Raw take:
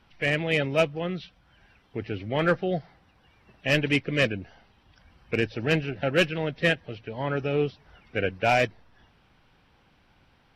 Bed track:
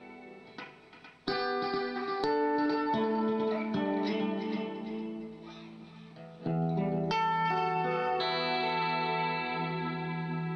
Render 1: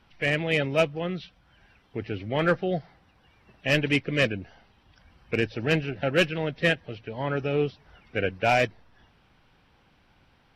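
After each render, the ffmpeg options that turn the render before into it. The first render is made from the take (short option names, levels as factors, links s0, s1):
-af anull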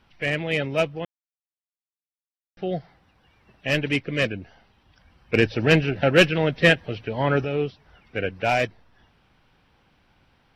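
-filter_complex "[0:a]asettb=1/sr,asplit=3[s0][s1][s2];[s0]atrim=end=5.344[s3];[s1]atrim=start=5.34:end=7.45,asetpts=PTS-STARTPTS,afade=t=in:d=0.004:c=qsin,afade=t=out:st=2.106:d=0.004:c=qsin,acontrast=83[s4];[s2]atrim=start=7.446[s5];[s3][s4]acrossfade=d=0.004:c1=hsin:c2=qsin[s6];[s6][s5]acrossfade=d=0.004:c1=qsin:c2=hsin,asettb=1/sr,asplit=3[s7][s8][s9];[s7]atrim=end=8.164[s10];[s8]atrim=start=8.16:end=8.58,asetpts=PTS-STARTPTS,afade=t=in:d=0.004:c=qsin,afade=t=out:st=0.416:d=0.004:c=qsin,acompressor=mode=upward:threshold=0.0178:ratio=2.5:attack=3.2:release=140:knee=2.83:detection=peak[s11];[s9]atrim=start=8.576[s12];[s10][s11]acrossfade=d=0.004:c1=hsin:c2=qsin[s13];[s13][s12]acrossfade=d=0.004:c1=qsin:c2=hsin,asplit=3[s14][s15][s16];[s14]atrim=end=1.05,asetpts=PTS-STARTPTS,afade=t=out:st=1.046:d=0.004:c=hsin[s17];[s15]atrim=start=1.05:end=2.57,asetpts=PTS-STARTPTS,volume=0[s18];[s16]atrim=start=2.57,asetpts=PTS-STARTPTS,afade=t=in:d=0.004:c=hsin[s19];[s17][s18][s19]concat=n=3:v=0:a=1"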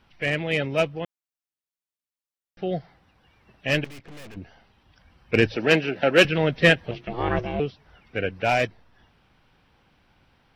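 -filter_complex "[0:a]asettb=1/sr,asplit=3[s0][s1][s2];[s0]atrim=end=3.844[s3];[s1]atrim=start=3.84:end=4.37,asetpts=PTS-STARTPTS,afade=t=in:d=0.004:c=qsin,afade=t=out:st=0.526:d=0.004:c=qsin,aeval=exprs='(tanh(126*val(0)+0.75)-tanh(0.75))/126':c=same[s4];[s2]atrim=start=4.366[s5];[s3][s4]acrossfade=d=0.004:c1=hsin:c2=qsin[s6];[s6][s5]acrossfade=d=0.004:c1=qsin:c2=hsin,asettb=1/sr,asplit=3[s7][s8][s9];[s7]atrim=end=5.564[s10];[s8]atrim=start=5.56:end=6.25,asetpts=PTS-STARTPTS,afade=t=in:d=0.004:c=qsin,afade=t=out:st=0.686:d=0.004:c=qsin,highpass=240[s11];[s9]atrim=start=6.246[s12];[s10][s11]acrossfade=d=0.004:c1=hsin:c2=qsin[s13];[s13][s12]acrossfade=d=0.004:c1=qsin:c2=hsin,asettb=1/sr,asplit=3[s14][s15][s16];[s14]atrim=end=6.914[s17];[s15]atrim=start=6.91:end=7.6,asetpts=PTS-STARTPTS,afade=t=in:d=0.004:c=qsin,afade=t=out:st=0.686:d=0.004:c=qsin,aeval=exprs='val(0)*sin(2*PI*240*n/s)':c=same[s18];[s16]atrim=start=7.596[s19];[s17][s18]acrossfade=d=0.004:c1=hsin:c2=qsin[s20];[s20][s19]acrossfade=d=0.004:c1=qsin:c2=hsin"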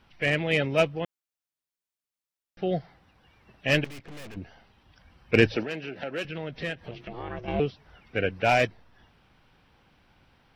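-filter_complex "[0:a]asettb=1/sr,asplit=3[s0][s1][s2];[s0]atrim=end=5.634[s3];[s1]atrim=start=5.63:end=7.48,asetpts=PTS-STARTPTS,afade=t=in:d=0.004:c=qsin,afade=t=out:st=1.846:d=0.004:c=qsin,acompressor=threshold=0.0141:ratio=2.5:attack=3.2:release=140:knee=1:detection=peak[s4];[s2]atrim=start=7.476[s5];[s3][s4]acrossfade=d=0.004:c1=hsin:c2=qsin[s6];[s6][s5]acrossfade=d=0.004:c1=qsin:c2=hsin"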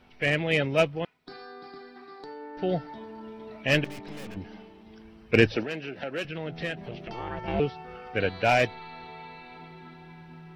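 -filter_complex "[1:a]volume=0.237[s0];[0:a][s0]amix=inputs=2:normalize=0"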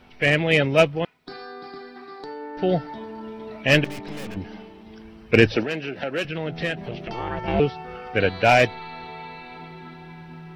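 -af "volume=2,alimiter=limit=0.708:level=0:latency=1"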